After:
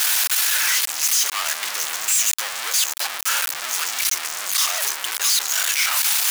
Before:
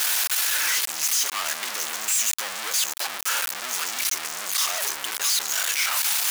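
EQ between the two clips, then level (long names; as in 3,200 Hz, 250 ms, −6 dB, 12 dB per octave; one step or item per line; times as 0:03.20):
high-pass filter 670 Hz 6 dB per octave
+4.0 dB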